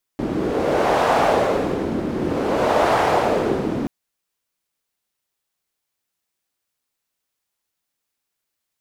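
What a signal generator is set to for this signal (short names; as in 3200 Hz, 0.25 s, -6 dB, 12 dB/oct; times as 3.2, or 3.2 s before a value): wind-like swept noise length 3.68 s, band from 280 Hz, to 740 Hz, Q 1.8, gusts 2, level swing 6.5 dB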